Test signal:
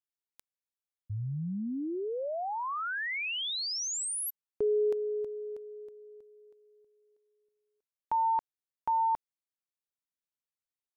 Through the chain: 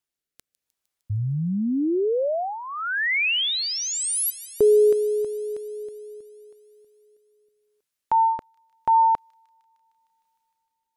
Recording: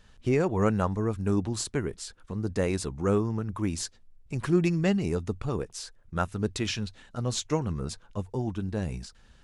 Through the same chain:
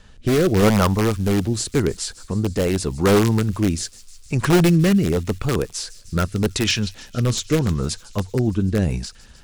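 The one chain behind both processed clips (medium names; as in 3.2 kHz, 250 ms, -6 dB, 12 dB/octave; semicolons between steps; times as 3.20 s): in parallel at -3 dB: integer overflow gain 20 dB; on the sum: rotary cabinet horn 0.85 Hz; feedback echo behind a high-pass 153 ms, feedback 77%, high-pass 4.1 kHz, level -17 dB; trim +7.5 dB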